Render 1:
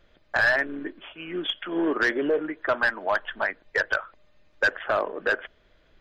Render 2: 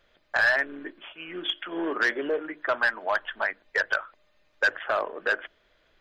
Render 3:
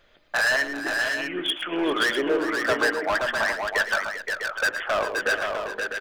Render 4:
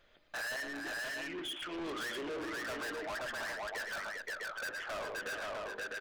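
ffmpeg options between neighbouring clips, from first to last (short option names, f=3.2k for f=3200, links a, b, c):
-af "lowshelf=f=380:g=-9,bandreject=f=50:t=h:w=6,bandreject=f=100:t=h:w=6,bandreject=f=150:t=h:w=6,bandreject=f=200:t=h:w=6,bandreject=f=250:t=h:w=6,bandreject=f=300:t=h:w=6,bandreject=f=350:t=h:w=6"
-filter_complex "[0:a]asoftclip=type=hard:threshold=-24.5dB,asplit=2[a][b];[b]aecho=0:1:102|112|396|523|651:0.1|0.251|0.237|0.562|0.398[c];[a][c]amix=inputs=2:normalize=0,volume=5dB"
-af "asoftclip=type=tanh:threshold=-30.5dB,volume=-7dB"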